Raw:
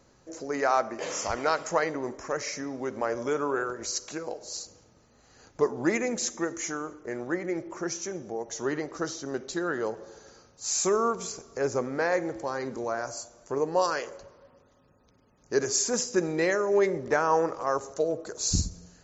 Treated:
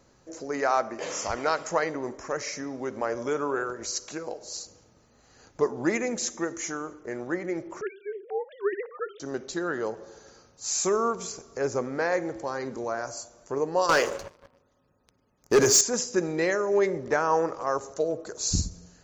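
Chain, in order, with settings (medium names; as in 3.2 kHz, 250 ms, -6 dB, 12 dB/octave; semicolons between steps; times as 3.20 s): 7.81–9.20 s: formants replaced by sine waves; 13.89–15.81 s: waveshaping leveller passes 3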